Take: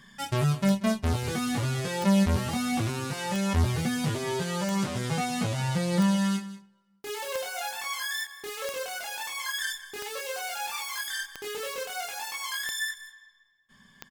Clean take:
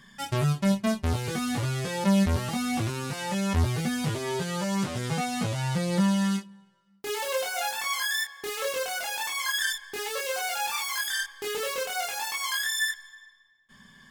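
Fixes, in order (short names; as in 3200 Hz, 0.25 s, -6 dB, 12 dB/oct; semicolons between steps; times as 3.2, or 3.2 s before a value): de-click; inverse comb 0.187 s -16 dB; gain correction +4 dB, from 6.66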